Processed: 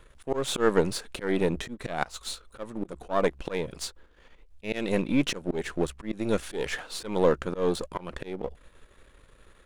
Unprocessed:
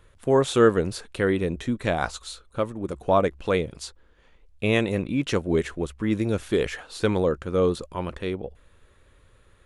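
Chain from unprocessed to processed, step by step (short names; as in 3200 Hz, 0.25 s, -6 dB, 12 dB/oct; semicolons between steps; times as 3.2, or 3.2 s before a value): half-wave gain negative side -7 dB; bell 95 Hz -10.5 dB 0.57 oct; auto swell 0.218 s; gain +4.5 dB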